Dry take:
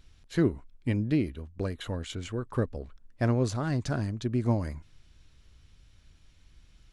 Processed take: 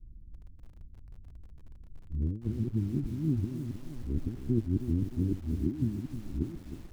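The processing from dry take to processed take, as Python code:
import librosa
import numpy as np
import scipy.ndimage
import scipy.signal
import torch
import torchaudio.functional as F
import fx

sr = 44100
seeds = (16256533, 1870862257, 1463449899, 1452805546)

y = np.flip(x).copy()
y = fx.env_lowpass(y, sr, base_hz=360.0, full_db=-21.5)
y = scipy.signal.sosfilt(scipy.signal.cheby2(4, 40, [650.0, 9500.0], 'bandstop', fs=sr, output='sos'), y)
y = fx.low_shelf(y, sr, hz=92.0, db=4.5)
y = fx.over_compress(y, sr, threshold_db=-32.0, ratio=-0.5)
y = fx.filter_sweep_lowpass(y, sr, from_hz=810.0, to_hz=320.0, start_s=1.42, end_s=3.06, q=2.3)
y = fx.echo_crushed(y, sr, ms=313, feedback_pct=55, bits=8, wet_db=-10.0)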